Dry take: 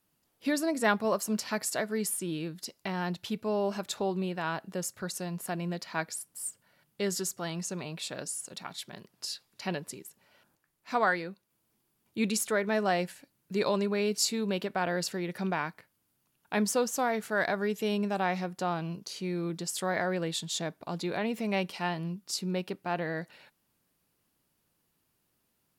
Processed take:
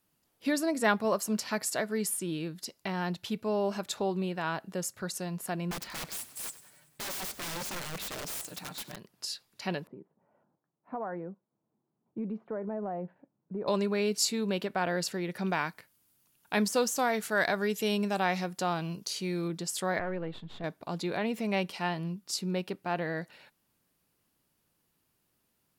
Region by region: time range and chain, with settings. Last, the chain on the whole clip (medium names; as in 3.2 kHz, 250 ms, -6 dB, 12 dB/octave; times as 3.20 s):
5.71–8.96 s: comb 6.6 ms, depth 71% + integer overflow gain 32.5 dB + frequency-shifting echo 95 ms, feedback 62%, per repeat +37 Hz, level -16 dB
9.87–13.68 s: Chebyshev band-pass 150–860 Hz + compression 4:1, threshold -31 dBFS + distance through air 320 m
15.47–19.48 s: de-esser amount 70% + treble shelf 2.9 kHz +7.5 dB
19.99–20.64 s: partial rectifier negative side -7 dB + distance through air 480 m
whole clip: none